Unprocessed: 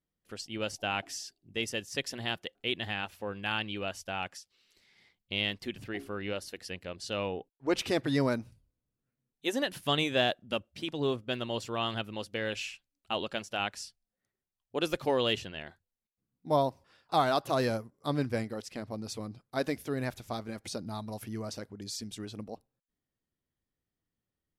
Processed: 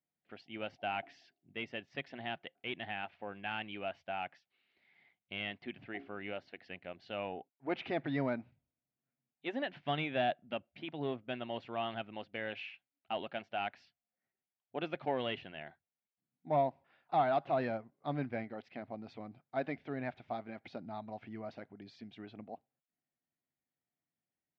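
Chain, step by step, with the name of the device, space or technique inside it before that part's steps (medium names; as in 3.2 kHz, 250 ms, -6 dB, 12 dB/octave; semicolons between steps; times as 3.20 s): overdrive pedal into a guitar cabinet (overdrive pedal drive 11 dB, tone 1.4 kHz, clips at -14 dBFS; cabinet simulation 85–3600 Hz, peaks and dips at 150 Hz +6 dB, 250 Hz +4 dB, 480 Hz -5 dB, 710 Hz +7 dB, 1.1 kHz -5 dB, 2.2 kHz +5 dB); trim -7.5 dB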